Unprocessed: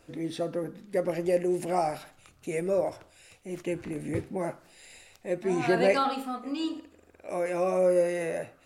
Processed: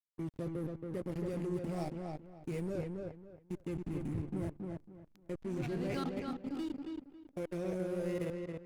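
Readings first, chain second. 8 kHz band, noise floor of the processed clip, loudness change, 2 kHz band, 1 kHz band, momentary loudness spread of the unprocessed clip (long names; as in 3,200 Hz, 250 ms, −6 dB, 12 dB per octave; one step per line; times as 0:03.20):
−14.0 dB, −65 dBFS, −10.5 dB, −15.0 dB, −16.5 dB, 15 LU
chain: guitar amp tone stack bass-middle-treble 10-0-1
output level in coarse steps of 18 dB
slack as between gear wheels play −57 dBFS
on a send: feedback echo with a low-pass in the loop 275 ms, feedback 25%, low-pass 3,200 Hz, level −3.5 dB
on the sum: level +17.5 dB
Opus 48 kbit/s 48,000 Hz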